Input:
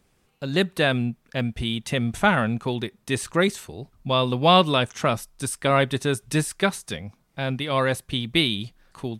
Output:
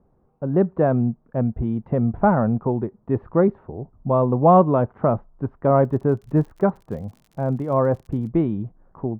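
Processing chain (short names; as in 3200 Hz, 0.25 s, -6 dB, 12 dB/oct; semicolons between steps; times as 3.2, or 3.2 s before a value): LPF 1000 Hz 24 dB/oct; 5.83–8.29 crackle 59/s -44 dBFS; gain +4.5 dB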